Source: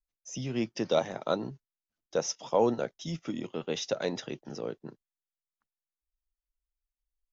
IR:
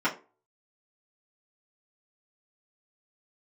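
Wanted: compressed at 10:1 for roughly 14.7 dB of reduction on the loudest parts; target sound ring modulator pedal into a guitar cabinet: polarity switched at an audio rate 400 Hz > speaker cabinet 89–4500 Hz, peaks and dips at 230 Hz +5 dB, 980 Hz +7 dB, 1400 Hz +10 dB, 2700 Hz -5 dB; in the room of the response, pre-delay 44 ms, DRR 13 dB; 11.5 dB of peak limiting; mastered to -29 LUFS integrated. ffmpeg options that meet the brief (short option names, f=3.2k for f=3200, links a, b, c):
-filter_complex "[0:a]acompressor=threshold=-35dB:ratio=10,alimiter=level_in=9dB:limit=-24dB:level=0:latency=1,volume=-9dB,asplit=2[a][b];[1:a]atrim=start_sample=2205,adelay=44[c];[b][c]afir=irnorm=-1:irlink=0,volume=-25.5dB[d];[a][d]amix=inputs=2:normalize=0,aeval=exprs='val(0)*sgn(sin(2*PI*400*n/s))':c=same,highpass=89,equalizer=f=230:t=q:w=4:g=5,equalizer=f=980:t=q:w=4:g=7,equalizer=f=1.4k:t=q:w=4:g=10,equalizer=f=2.7k:t=q:w=4:g=-5,lowpass=f=4.5k:w=0.5412,lowpass=f=4.5k:w=1.3066,volume=13dB"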